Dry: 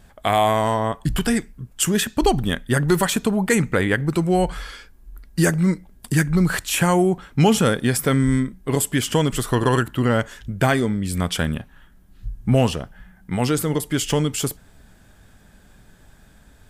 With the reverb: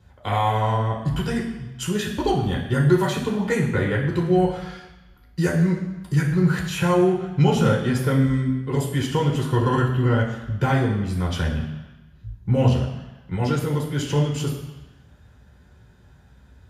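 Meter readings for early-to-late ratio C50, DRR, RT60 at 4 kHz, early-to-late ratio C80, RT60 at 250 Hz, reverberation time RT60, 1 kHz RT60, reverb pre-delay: 5.5 dB, -4.5 dB, 1.1 s, 8.0 dB, 1.0 s, 1.1 s, 1.2 s, 3 ms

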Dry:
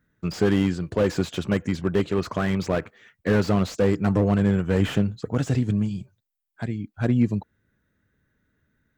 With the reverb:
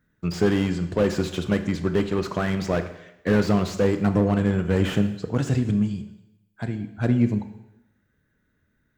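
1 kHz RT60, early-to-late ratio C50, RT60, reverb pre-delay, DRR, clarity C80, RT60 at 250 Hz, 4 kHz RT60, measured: 0.90 s, 11.0 dB, 0.85 s, 19 ms, 8.5 dB, 13.0 dB, 0.90 s, 0.85 s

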